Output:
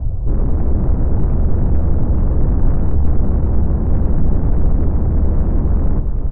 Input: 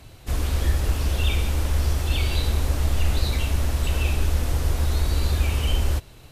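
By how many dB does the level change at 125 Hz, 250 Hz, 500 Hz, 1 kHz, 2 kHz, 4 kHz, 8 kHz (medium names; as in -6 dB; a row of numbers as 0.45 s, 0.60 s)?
+6.5 dB, +13.0 dB, +7.0 dB, +2.0 dB, under -10 dB, under -35 dB, under -40 dB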